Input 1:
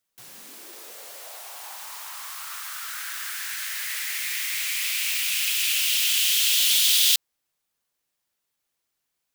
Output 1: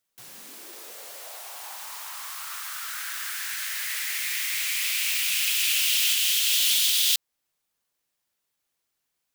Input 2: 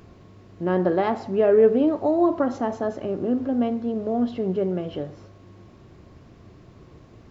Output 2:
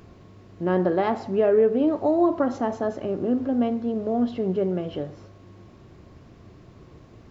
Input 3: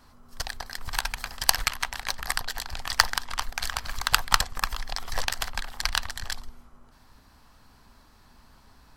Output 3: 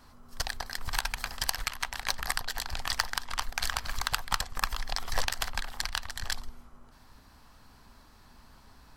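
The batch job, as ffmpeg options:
-af "alimiter=limit=0.282:level=0:latency=1:release=295"

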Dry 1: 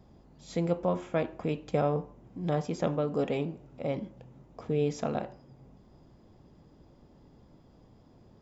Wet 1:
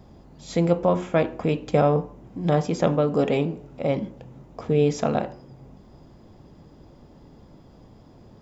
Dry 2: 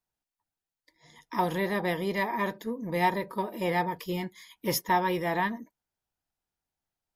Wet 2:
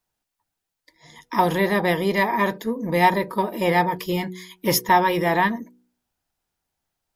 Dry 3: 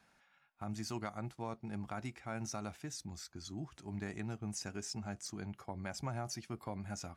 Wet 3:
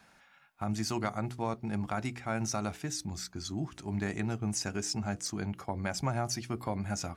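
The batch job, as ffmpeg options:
-af "bandreject=f=61.01:t=h:w=4,bandreject=f=122.02:t=h:w=4,bandreject=f=183.03:t=h:w=4,bandreject=f=244.04:t=h:w=4,bandreject=f=305.05:t=h:w=4,bandreject=f=366.06:t=h:w=4,bandreject=f=427.07:t=h:w=4,bandreject=f=488.08:t=h:w=4,volume=2.66"

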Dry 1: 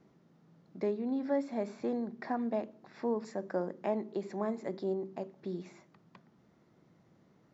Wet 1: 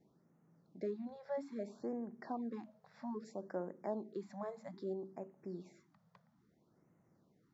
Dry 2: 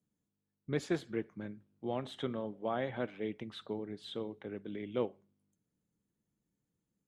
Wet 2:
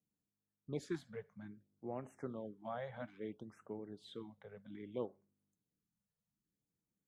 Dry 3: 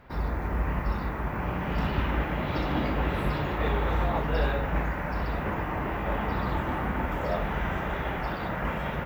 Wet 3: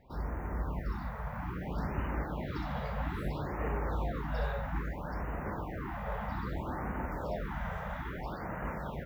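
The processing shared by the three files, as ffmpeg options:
-af "equalizer=f=2700:t=o:w=0.68:g=-7,afftfilt=real='re*(1-between(b*sr/1024,290*pow(4300/290,0.5+0.5*sin(2*PI*0.61*pts/sr))/1.41,290*pow(4300/290,0.5+0.5*sin(2*PI*0.61*pts/sr))*1.41))':imag='im*(1-between(b*sr/1024,290*pow(4300/290,0.5+0.5*sin(2*PI*0.61*pts/sr))/1.41,290*pow(4300/290,0.5+0.5*sin(2*PI*0.61*pts/sr))*1.41))':win_size=1024:overlap=0.75,volume=0.447"

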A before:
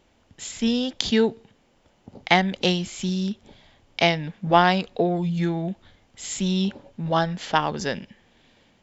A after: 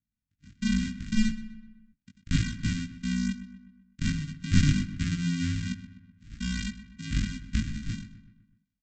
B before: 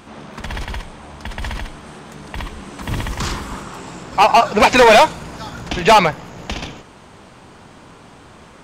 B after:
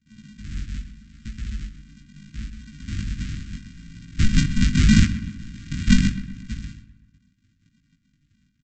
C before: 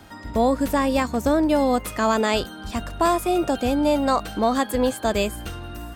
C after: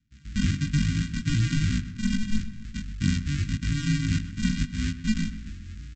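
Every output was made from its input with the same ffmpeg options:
-filter_complex "[0:a]afftdn=nr=22:nf=-28,aresample=16000,acrusher=samples=37:mix=1:aa=0.000001,aresample=44100,flanger=delay=18:depth=3:speed=0.77,asuperstop=centerf=640:order=8:qfactor=0.51,asplit=2[s0][s1];[s1]adelay=126,lowpass=f=2800:p=1,volume=0.224,asplit=2[s2][s3];[s3]adelay=126,lowpass=f=2800:p=1,volume=0.53,asplit=2[s4][s5];[s5]adelay=126,lowpass=f=2800:p=1,volume=0.53,asplit=2[s6][s7];[s7]adelay=126,lowpass=f=2800:p=1,volume=0.53,asplit=2[s8][s9];[s9]adelay=126,lowpass=f=2800:p=1,volume=0.53[s10];[s0][s2][s4][s6][s8][s10]amix=inputs=6:normalize=0,volume=0.891"

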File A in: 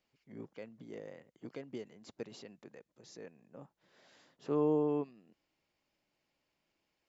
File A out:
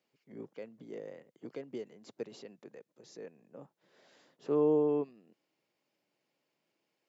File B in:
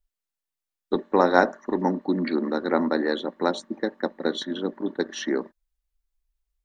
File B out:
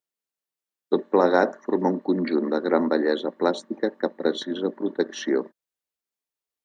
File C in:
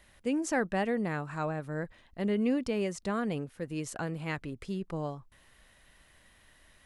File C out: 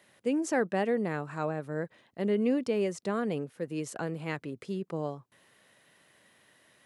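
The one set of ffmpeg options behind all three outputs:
-af "highpass=f=120:w=0.5412,highpass=f=120:w=1.3066,equalizer=f=440:w=1.4:g=5,alimiter=level_in=1.78:limit=0.891:release=50:level=0:latency=1,volume=0.501"

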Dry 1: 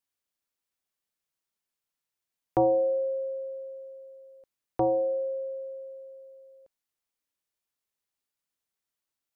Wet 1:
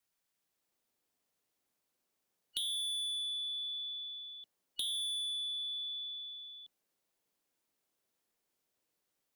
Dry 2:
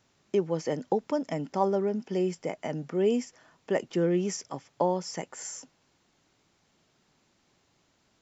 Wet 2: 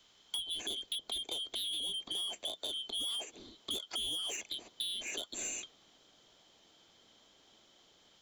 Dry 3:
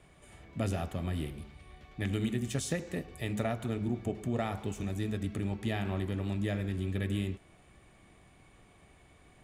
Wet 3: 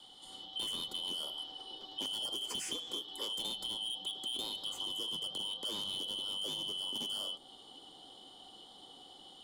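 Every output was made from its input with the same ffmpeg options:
-filter_complex "[0:a]afftfilt=real='real(if(lt(b,272),68*(eq(floor(b/68),0)*1+eq(floor(b/68),1)*3+eq(floor(b/68),2)*0+eq(floor(b/68),3)*2)+mod(b,68),b),0)':imag='imag(if(lt(b,272),68*(eq(floor(b/68),0)*1+eq(floor(b/68),1)*3+eq(floor(b/68),2)*0+eq(floor(b/68),3)*2)+mod(b,68),b),0)':win_size=2048:overlap=0.75,equalizer=f=61:w=5.2:g=-5.5,acrossover=split=180|720|1800[s0][s1][s2][s3];[s1]dynaudnorm=f=390:g=3:m=2.51[s4];[s0][s4][s2][s3]amix=inputs=4:normalize=0,asoftclip=type=tanh:threshold=0.0376,acrossover=split=970|7900[s5][s6][s7];[s5]acompressor=threshold=0.00282:ratio=4[s8];[s6]acompressor=threshold=0.00794:ratio=4[s9];[s7]acompressor=threshold=0.00355:ratio=4[s10];[s8][s9][s10]amix=inputs=3:normalize=0,volume=1.5"

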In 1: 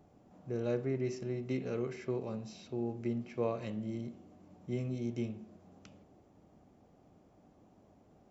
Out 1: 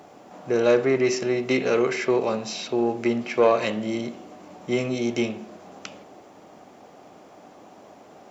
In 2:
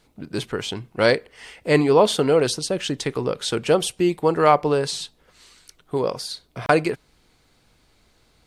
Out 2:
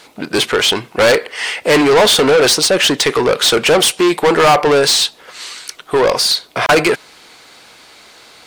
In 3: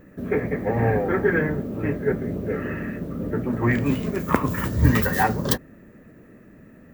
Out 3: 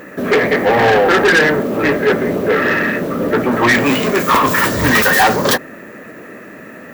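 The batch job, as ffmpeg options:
-filter_complex "[0:a]asplit=2[s0][s1];[s1]highpass=f=720:p=1,volume=31.6,asoftclip=type=tanh:threshold=0.891[s2];[s0][s2]amix=inputs=2:normalize=0,lowpass=f=7400:p=1,volume=0.501,lowshelf=f=200:g=-6,volume=0.891"

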